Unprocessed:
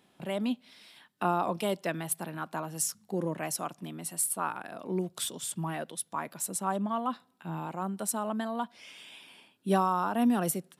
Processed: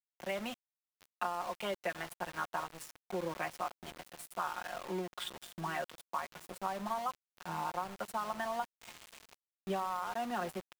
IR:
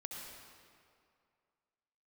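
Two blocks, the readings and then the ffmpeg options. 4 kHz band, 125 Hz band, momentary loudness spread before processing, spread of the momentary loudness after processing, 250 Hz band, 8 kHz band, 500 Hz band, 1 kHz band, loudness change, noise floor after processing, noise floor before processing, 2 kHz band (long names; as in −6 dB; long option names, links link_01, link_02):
−4.0 dB, −12.0 dB, 12 LU, 12 LU, −13.0 dB, −17.5 dB, −6.0 dB, −4.5 dB, −7.0 dB, below −85 dBFS, −67 dBFS, −1.0 dB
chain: -filter_complex "[0:a]acrossover=split=550 3200:gain=0.178 1 0.0708[link_01][link_02][link_03];[link_01][link_02][link_03]amix=inputs=3:normalize=0,aecho=1:1:5.6:0.68,acompressor=threshold=-34dB:ratio=20,asplit=2[link_04][link_05];[link_05]adelay=731,lowpass=frequency=1100:poles=1,volume=-17dB,asplit=2[link_06][link_07];[link_07]adelay=731,lowpass=frequency=1100:poles=1,volume=0.32,asplit=2[link_08][link_09];[link_09]adelay=731,lowpass=frequency=1100:poles=1,volume=0.32[link_10];[link_04][link_06][link_08][link_10]amix=inputs=4:normalize=0,asplit=2[link_11][link_12];[1:a]atrim=start_sample=2205[link_13];[link_12][link_13]afir=irnorm=-1:irlink=0,volume=-15dB[link_14];[link_11][link_14]amix=inputs=2:normalize=0,aeval=exprs='val(0)*gte(abs(val(0)),0.00631)':channel_layout=same,volume=1.5dB"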